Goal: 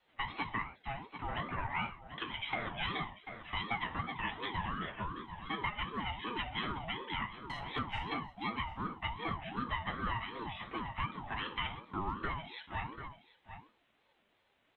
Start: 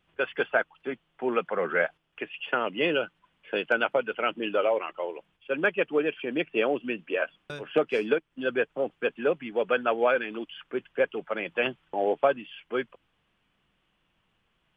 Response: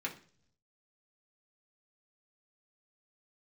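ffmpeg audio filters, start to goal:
-filter_complex "[0:a]aecho=1:1:738:0.112[link_01];[1:a]atrim=start_sample=2205,afade=type=out:start_time=0.19:duration=0.01,atrim=end_sample=8820[link_02];[link_01][link_02]afir=irnorm=-1:irlink=0,acrossover=split=440[link_03][link_04];[link_03]asoftclip=type=tanh:threshold=-34dB[link_05];[link_05][link_04]amix=inputs=2:normalize=0,acompressor=threshold=-34dB:ratio=3,aeval=exprs='val(0)*sin(2*PI*570*n/s+570*0.3/2.7*sin(2*PI*2.7*n/s))':channel_layout=same"

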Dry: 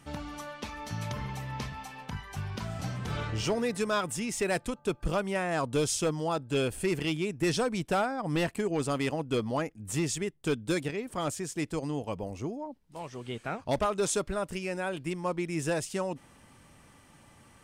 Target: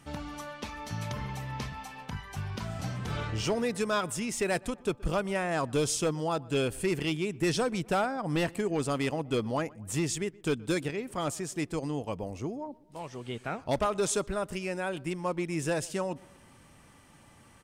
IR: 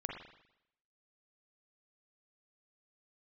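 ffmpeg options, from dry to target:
-filter_complex "[0:a]asplit=2[link_01][link_02];[link_02]adelay=123,lowpass=frequency=2000:poles=1,volume=-23dB,asplit=2[link_03][link_04];[link_04]adelay=123,lowpass=frequency=2000:poles=1,volume=0.54,asplit=2[link_05][link_06];[link_06]adelay=123,lowpass=frequency=2000:poles=1,volume=0.54,asplit=2[link_07][link_08];[link_08]adelay=123,lowpass=frequency=2000:poles=1,volume=0.54[link_09];[link_01][link_03][link_05][link_07][link_09]amix=inputs=5:normalize=0"

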